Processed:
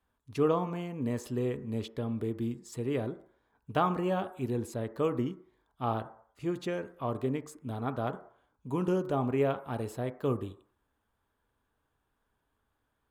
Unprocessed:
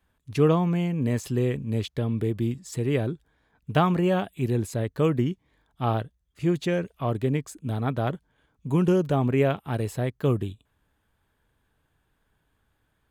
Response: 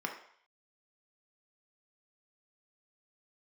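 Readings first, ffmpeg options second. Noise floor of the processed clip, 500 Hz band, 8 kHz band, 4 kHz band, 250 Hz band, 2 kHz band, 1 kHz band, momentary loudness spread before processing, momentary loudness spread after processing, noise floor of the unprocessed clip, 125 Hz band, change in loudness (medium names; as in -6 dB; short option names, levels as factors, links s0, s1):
-79 dBFS, -5.5 dB, -8.0 dB, -8.5 dB, -7.5 dB, -8.0 dB, -3.5 dB, 9 LU, 9 LU, -73 dBFS, -11.0 dB, -7.0 dB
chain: -filter_complex "[0:a]asplit=2[s0][s1];[s1]highshelf=f=2000:t=q:w=1.5:g=-13.5[s2];[1:a]atrim=start_sample=2205[s3];[s2][s3]afir=irnorm=-1:irlink=0,volume=0.422[s4];[s0][s4]amix=inputs=2:normalize=0,volume=0.376"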